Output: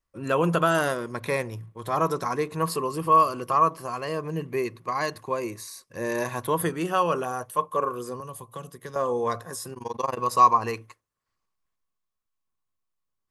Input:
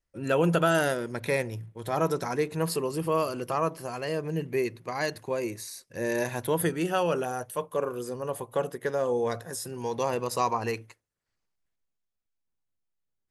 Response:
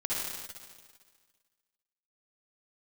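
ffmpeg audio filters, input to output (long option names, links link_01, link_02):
-filter_complex "[0:a]equalizer=frequency=1100:width_type=o:width=0.24:gain=15,asettb=1/sr,asplit=3[link_01][link_02][link_03];[link_01]atrim=end=8.204[link_04];[link_02]atrim=start=8.2:end=8.96,asetpts=PTS-STARTPTS,afade=type=in:duration=0.004:curve=qsin,afade=type=out:start_time=0.756:duration=0.004:curve=qsin,acrossover=split=200|3000[link_05][link_06][link_07];[link_06]acompressor=threshold=-43dB:ratio=3[link_08];[link_05][link_08][link_07]amix=inputs=3:normalize=0[link_09];[link_03]atrim=start=8.956[link_10];[link_04][link_09]acrossfade=duration=0.004:curve1=hsin:curve2=qsin[link_11];[link_11][link_10]acrossfade=duration=0.004:curve1=qsin:curve2=hsin,asplit=3[link_12][link_13][link_14];[link_12]afade=type=out:start_time=9.73:duration=0.02[link_15];[link_13]tremolo=f=22:d=0.947,afade=type=in:start_time=9.73:duration=0.02,afade=type=out:start_time=10.17:duration=0.02[link_16];[link_14]afade=type=in:start_time=10.17:duration=0.02[link_17];[link_15][link_16][link_17]amix=inputs=3:normalize=0"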